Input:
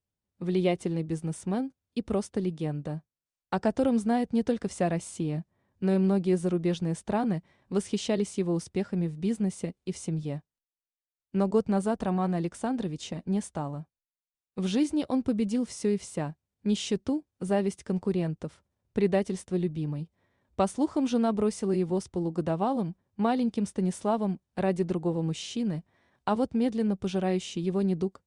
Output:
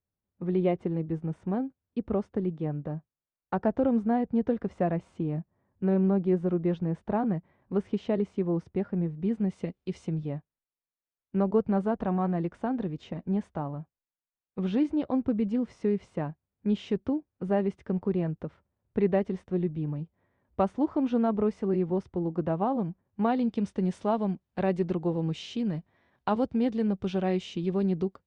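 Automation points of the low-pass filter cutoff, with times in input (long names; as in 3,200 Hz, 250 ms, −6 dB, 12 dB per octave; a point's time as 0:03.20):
0:09.20 1,600 Hz
0:09.82 3,800 Hz
0:10.33 2,000 Hz
0:23.05 2,000 Hz
0:23.60 3,800 Hz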